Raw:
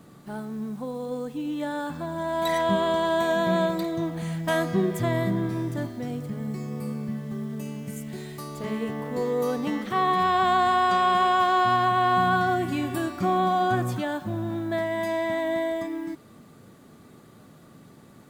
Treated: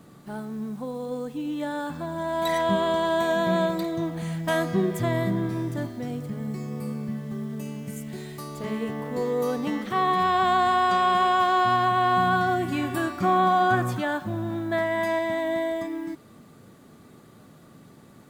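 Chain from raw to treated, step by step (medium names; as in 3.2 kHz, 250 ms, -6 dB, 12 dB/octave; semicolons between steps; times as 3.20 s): 12.70–15.19 s: dynamic bell 1.4 kHz, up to +6 dB, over -39 dBFS, Q 0.94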